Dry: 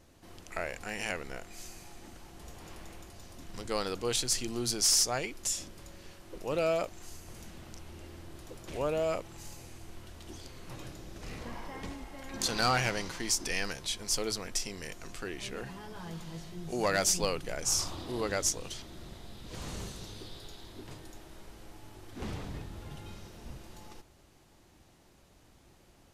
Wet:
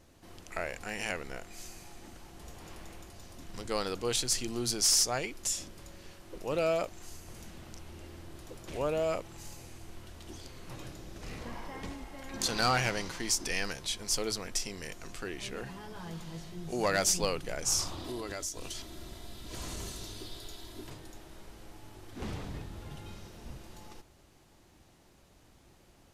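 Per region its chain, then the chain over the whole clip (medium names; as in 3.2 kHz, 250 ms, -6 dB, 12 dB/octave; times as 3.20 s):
18.04–20.90 s: treble shelf 6 kHz +7 dB + compression 5:1, threshold -35 dBFS + comb 3 ms, depth 37%
whole clip: none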